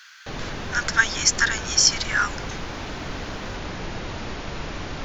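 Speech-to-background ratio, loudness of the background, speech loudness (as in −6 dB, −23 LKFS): 12.5 dB, −33.0 LKFS, −20.5 LKFS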